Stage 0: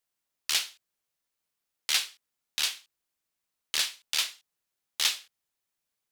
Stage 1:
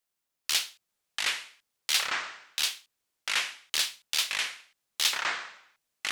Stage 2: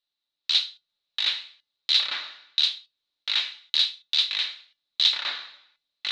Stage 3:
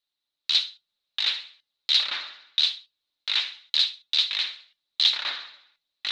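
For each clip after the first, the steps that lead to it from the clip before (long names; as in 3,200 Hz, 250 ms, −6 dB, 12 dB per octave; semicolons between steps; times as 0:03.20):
mains-hum notches 60/120/180 Hz; delay with pitch and tempo change per echo 444 ms, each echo −7 semitones, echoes 2
low-pass with resonance 3,900 Hz, resonance Q 10; tuned comb filter 290 Hz, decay 0.18 s, harmonics all, mix 60%
pitch vibrato 15 Hz 63 cents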